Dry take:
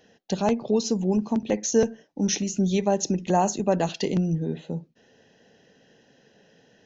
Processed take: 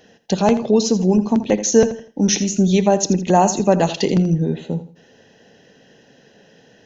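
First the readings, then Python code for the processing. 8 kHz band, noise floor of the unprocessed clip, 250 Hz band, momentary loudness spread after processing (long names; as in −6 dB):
can't be measured, −61 dBFS, +8.0 dB, 6 LU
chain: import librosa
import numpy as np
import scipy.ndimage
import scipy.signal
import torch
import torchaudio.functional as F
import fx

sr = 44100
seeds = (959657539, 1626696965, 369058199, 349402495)

y = fx.echo_feedback(x, sr, ms=82, feedback_pct=30, wet_db=-13.5)
y = F.gain(torch.from_numpy(y), 7.5).numpy()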